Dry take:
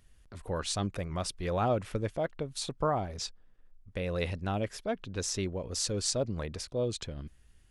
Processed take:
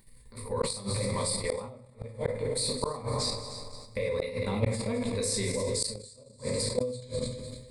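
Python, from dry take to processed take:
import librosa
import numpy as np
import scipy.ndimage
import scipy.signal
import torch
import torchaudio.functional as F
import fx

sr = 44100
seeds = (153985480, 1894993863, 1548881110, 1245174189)

y = fx.ripple_eq(x, sr, per_octave=0.96, db=17)
y = fx.vibrato(y, sr, rate_hz=3.1, depth_cents=53.0)
y = fx.high_shelf(y, sr, hz=7400.0, db=11.5)
y = fx.notch(y, sr, hz=1900.0, q=27.0)
y = fx.echo_heads(y, sr, ms=101, heads='second and third', feedback_pct=44, wet_db=-13)
y = fx.room_shoebox(y, sr, seeds[0], volume_m3=140.0, walls='mixed', distance_m=1.2)
y = fx.level_steps(y, sr, step_db=10)
y = fx.gate_flip(y, sr, shuts_db=-15.0, range_db=-31)
y = fx.sustainer(y, sr, db_per_s=76.0)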